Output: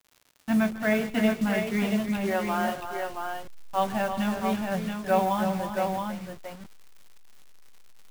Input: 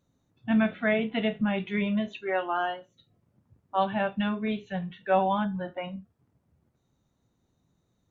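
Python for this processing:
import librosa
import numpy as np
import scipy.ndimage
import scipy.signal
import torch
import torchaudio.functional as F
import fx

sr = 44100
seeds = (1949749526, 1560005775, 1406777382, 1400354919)

y = fx.delta_hold(x, sr, step_db=-35.5)
y = fx.dmg_crackle(y, sr, seeds[0], per_s=100.0, level_db=-42.0)
y = fx.echo_multitap(y, sr, ms=(142, 155, 323, 402, 674), db=(-19.0, -19.5, -8.5, -16.5, -5.0))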